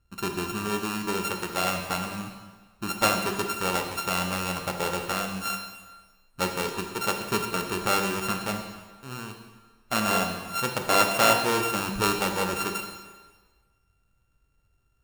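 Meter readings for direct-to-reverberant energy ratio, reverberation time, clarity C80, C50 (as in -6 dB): 3.5 dB, 1.4 s, 7.5 dB, 5.5 dB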